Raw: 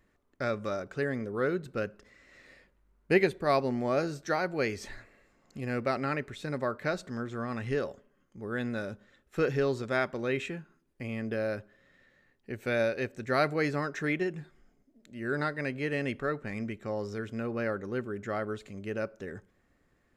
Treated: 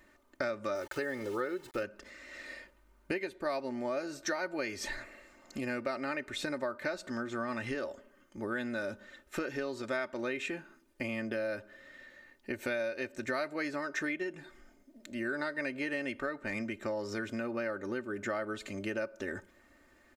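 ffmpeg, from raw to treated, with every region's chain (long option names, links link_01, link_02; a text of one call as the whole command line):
ffmpeg -i in.wav -filter_complex "[0:a]asettb=1/sr,asplit=3[link_01][link_02][link_03];[link_01]atrim=end=0.754[link_04];[link_02]atrim=start=0.75:end=1.83,asetpts=PTS-STARTPTS,afade=type=in:duration=0.004:curve=qsin,afade=type=out:start_time=1.076:duration=0.004:curve=qsin,aeval=exprs='val(0)*gte(abs(val(0)),0.00376)':channel_layout=same,aecho=1:1:2.3:0.45,atrim=end_sample=47628[link_05];[link_03]atrim=start=1.826[link_06];[link_04][link_05]acrossfade=duration=0.004:curve1=hsin:curve2=qsin[link_07];[link_07][link_06]acrossfade=duration=0.004:curve1=qsin:curve2=hsin,aecho=1:1:3.3:0.61,acompressor=threshold=-38dB:ratio=12,lowshelf=frequency=260:gain=-9.5,volume=8.5dB" out.wav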